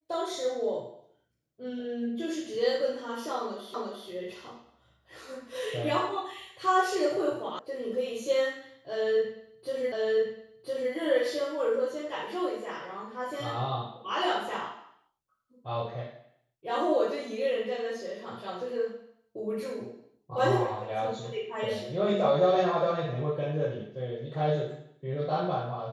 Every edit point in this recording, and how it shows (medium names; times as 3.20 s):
3.74 s: repeat of the last 0.35 s
7.59 s: sound stops dead
9.92 s: repeat of the last 1.01 s